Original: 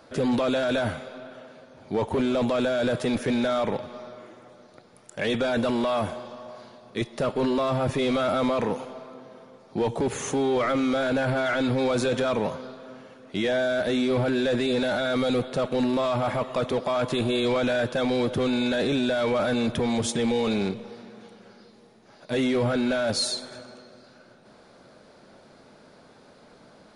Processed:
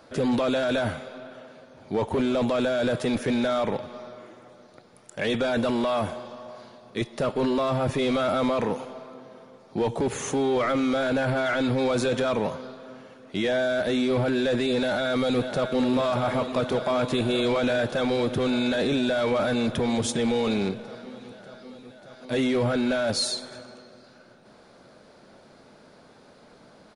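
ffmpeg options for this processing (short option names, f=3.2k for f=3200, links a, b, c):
-filter_complex "[0:a]asplit=2[a][b];[b]afade=t=in:st=14.75:d=0.01,afade=t=out:st=15.87:d=0.01,aecho=0:1:590|1180|1770|2360|2950|3540|4130|4720|5310|5900|6490|7080:0.334965|0.284721|0.242013|0.205711|0.174854|0.148626|0.126332|0.107382|0.0912749|0.0775837|0.0659461|0.0560542[c];[a][c]amix=inputs=2:normalize=0"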